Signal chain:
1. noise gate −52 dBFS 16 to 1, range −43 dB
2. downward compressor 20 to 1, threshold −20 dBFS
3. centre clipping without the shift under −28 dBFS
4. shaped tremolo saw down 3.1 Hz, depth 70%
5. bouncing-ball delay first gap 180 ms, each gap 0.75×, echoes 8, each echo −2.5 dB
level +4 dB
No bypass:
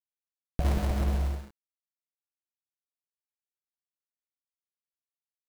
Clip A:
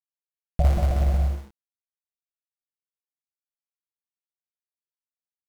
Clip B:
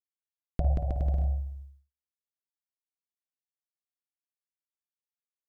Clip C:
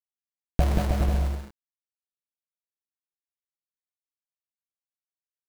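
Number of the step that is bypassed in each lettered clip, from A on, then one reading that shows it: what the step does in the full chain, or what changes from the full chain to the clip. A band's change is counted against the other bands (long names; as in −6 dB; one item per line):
2, average gain reduction 2.0 dB
3, distortion level −8 dB
4, change in crest factor +4.0 dB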